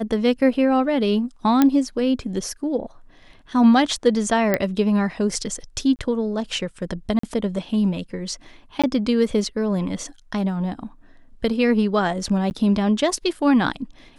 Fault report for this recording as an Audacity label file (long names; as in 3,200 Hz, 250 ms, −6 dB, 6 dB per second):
1.620000	1.620000	click −4 dBFS
4.540000	4.540000	click −6 dBFS
5.960000	5.990000	drop-out 29 ms
7.190000	7.230000	drop-out 44 ms
8.820000	8.840000	drop-out 16 ms
12.500000	12.510000	drop-out 9.9 ms